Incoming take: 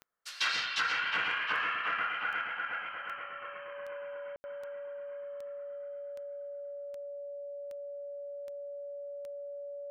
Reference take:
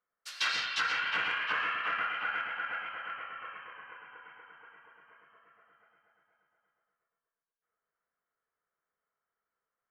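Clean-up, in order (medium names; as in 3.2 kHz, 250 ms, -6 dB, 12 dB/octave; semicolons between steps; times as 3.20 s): de-click; band-stop 570 Hz, Q 30; room tone fill 4.36–4.44 s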